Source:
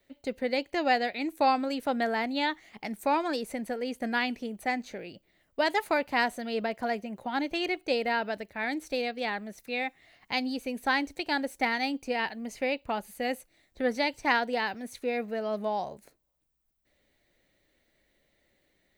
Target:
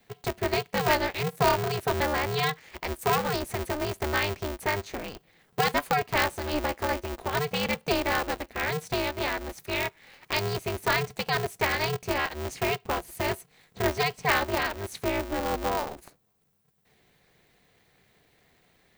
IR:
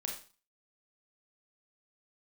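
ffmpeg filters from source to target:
-filter_complex "[0:a]asplit=2[link_01][link_02];[link_02]acompressor=threshold=-41dB:ratio=6,volume=2dB[link_03];[link_01][link_03]amix=inputs=2:normalize=0,aeval=exprs='val(0)*sgn(sin(2*PI*150*n/s))':channel_layout=same"

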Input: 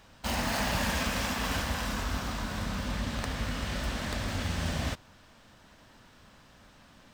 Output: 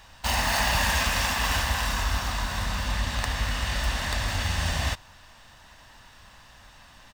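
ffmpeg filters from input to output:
ffmpeg -i in.wav -af "equalizer=frequency=220:width=0.59:gain=-11,aecho=1:1:1.1:0.32,volume=7dB" out.wav

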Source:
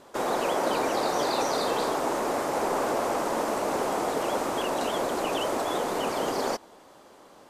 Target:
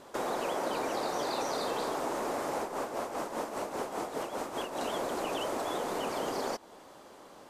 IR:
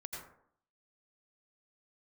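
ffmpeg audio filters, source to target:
-filter_complex "[0:a]acompressor=threshold=-35dB:ratio=2,asplit=3[link_01][link_02][link_03];[link_01]afade=type=out:start_time=2.59:duration=0.02[link_04];[link_02]tremolo=f=5:d=0.62,afade=type=in:start_time=2.59:duration=0.02,afade=type=out:start_time=4.79:duration=0.02[link_05];[link_03]afade=type=in:start_time=4.79:duration=0.02[link_06];[link_04][link_05][link_06]amix=inputs=3:normalize=0"

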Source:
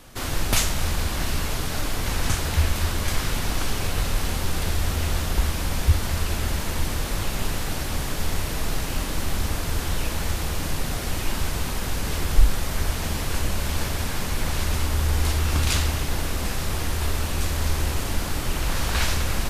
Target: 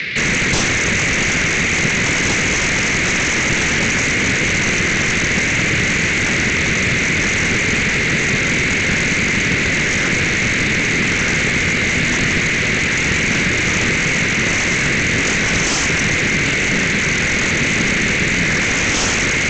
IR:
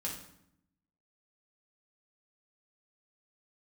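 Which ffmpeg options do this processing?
-filter_complex "[0:a]equalizer=frequency=1800:width=2.3:gain=-8.5,acrossover=split=510[link_01][link_02];[link_02]aexciter=amount=9.8:drive=3.5:freq=2300[link_03];[link_01][link_03]amix=inputs=2:normalize=0,acrossover=split=3000[link_04][link_05];[link_05]acompressor=threshold=-21dB:ratio=4:attack=1:release=60[link_06];[link_04][link_06]amix=inputs=2:normalize=0,highpass=frequency=200:width=0.5412,highpass=frequency=200:width=1.3066,equalizer=frequency=220:width_type=q:width=4:gain=-5,equalizer=frequency=530:width_type=q:width=4:gain=-5,equalizer=frequency=1300:width_type=q:width=4:gain=-10,equalizer=frequency=2300:width_type=q:width=4:gain=-5,equalizer=frequency=3800:width_type=q:width=4:gain=10,equalizer=frequency=5800:width_type=q:width=4:gain=-8,lowpass=frequency=6300:width=0.5412,lowpass=frequency=6300:width=1.3066,asetrate=24750,aresample=44100,atempo=1.7818,aresample=16000,aeval=exprs='0.794*sin(PI/2*8.91*val(0)/0.794)':channel_layout=same,aresample=44100,acrossover=split=440[link_07][link_08];[link_08]acompressor=threshold=-40dB:ratio=1.5[link_09];[link_07][link_09]amix=inputs=2:normalize=0"

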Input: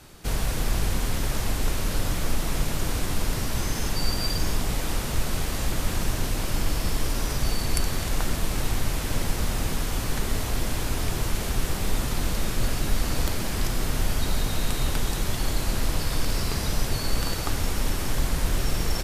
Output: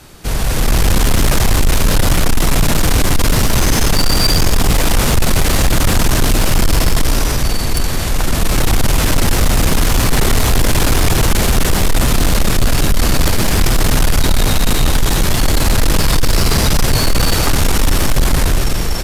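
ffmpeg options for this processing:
ffmpeg -i in.wav -af "dynaudnorm=framelen=100:gausssize=13:maxgain=12.5dB,asoftclip=type=tanh:threshold=-15dB,volume=8.5dB" out.wav

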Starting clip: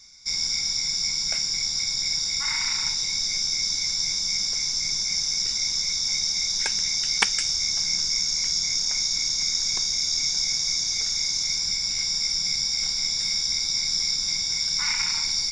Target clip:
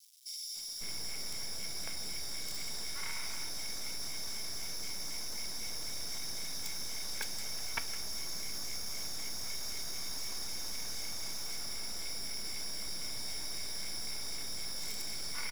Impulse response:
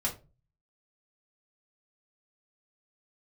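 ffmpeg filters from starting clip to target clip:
-filter_complex "[0:a]asoftclip=type=tanh:threshold=-21dB,asplit=2[link_01][link_02];[link_02]highpass=frequency=720:poles=1,volume=5dB,asoftclip=type=tanh:threshold=-21dB[link_03];[link_01][link_03]amix=inputs=2:normalize=0,lowpass=frequency=3500:poles=1,volume=-6dB,acrusher=bits=5:dc=4:mix=0:aa=0.000001,acrossover=split=3400[link_04][link_05];[link_04]adelay=550[link_06];[link_06][link_05]amix=inputs=2:normalize=0,asplit=2[link_07][link_08];[1:a]atrim=start_sample=2205[link_09];[link_08][link_09]afir=irnorm=-1:irlink=0,volume=-17dB[link_10];[link_07][link_10]amix=inputs=2:normalize=0,volume=-5.5dB"

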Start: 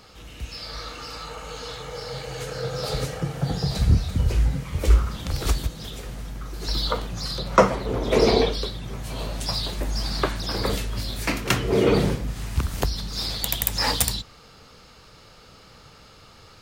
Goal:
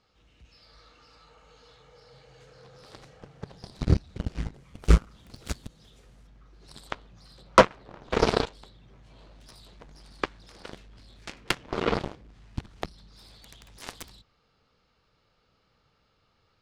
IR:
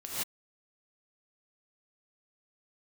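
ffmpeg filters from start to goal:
-af "asetnsamples=nb_out_samples=441:pad=0,asendcmd='4.54 lowpass f 9700;6.27 lowpass f 4500',lowpass=5700,aeval=exprs='0.891*(cos(1*acos(clip(val(0)/0.891,-1,1)))-cos(1*PI/2))+0.141*(cos(7*acos(clip(val(0)/0.891,-1,1)))-cos(7*PI/2))':channel_layout=same"

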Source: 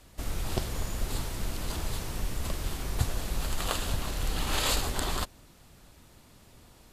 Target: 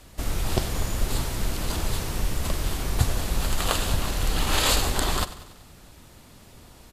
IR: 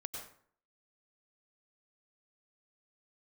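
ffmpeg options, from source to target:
-af "aecho=1:1:95|190|285|380|475:0.168|0.094|0.0526|0.0295|0.0165,volume=6dB"

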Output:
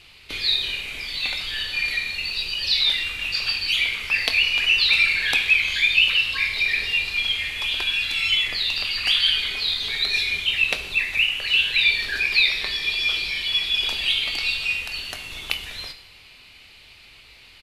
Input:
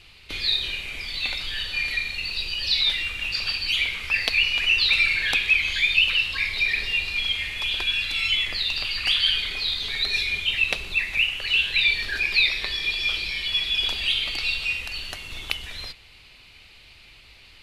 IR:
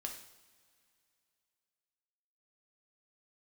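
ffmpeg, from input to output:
-filter_complex "[0:a]lowshelf=frequency=100:gain=-6.5,asplit=2[link_01][link_02];[link_02]adelay=23,volume=-13.5dB[link_03];[link_01][link_03]amix=inputs=2:normalize=0,asplit=2[link_04][link_05];[1:a]atrim=start_sample=2205,asetrate=36162,aresample=44100,highshelf=frequency=11000:gain=9[link_06];[link_05][link_06]afir=irnorm=-1:irlink=0,volume=-2.5dB[link_07];[link_04][link_07]amix=inputs=2:normalize=0,volume=-2.5dB"

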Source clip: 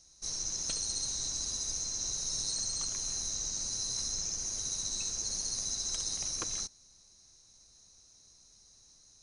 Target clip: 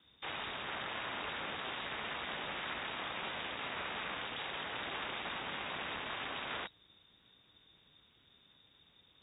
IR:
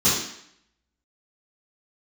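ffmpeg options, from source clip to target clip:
-af "aeval=exprs='(mod(56.2*val(0)+1,2)-1)/56.2':channel_layout=same,highshelf=frequency=2700:gain=10,aeval=exprs='val(0)*sin(2*PI*200*n/s)':channel_layout=same,lowpass=frequency=3200:width_type=q:width=0.5098,lowpass=frequency=3200:width_type=q:width=0.6013,lowpass=frequency=3200:width_type=q:width=0.9,lowpass=frequency=3200:width_type=q:width=2.563,afreqshift=-3800,highpass=44,equalizer=frequency=230:width=1.2:gain=3,volume=7dB"

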